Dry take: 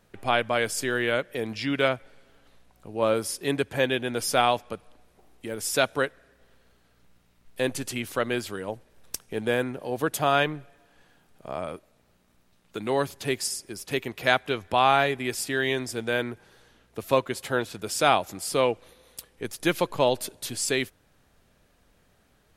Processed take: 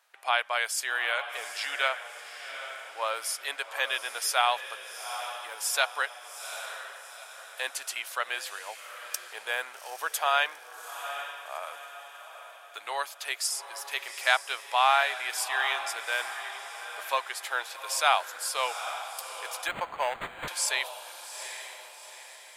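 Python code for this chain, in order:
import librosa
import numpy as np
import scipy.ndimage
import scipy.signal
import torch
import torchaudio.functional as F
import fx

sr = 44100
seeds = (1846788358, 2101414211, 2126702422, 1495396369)

p1 = scipy.signal.sosfilt(scipy.signal.butter(4, 780.0, 'highpass', fs=sr, output='sos'), x)
p2 = p1 + fx.echo_diffused(p1, sr, ms=810, feedback_pct=47, wet_db=-10, dry=0)
y = fx.resample_linear(p2, sr, factor=8, at=(19.67, 20.48))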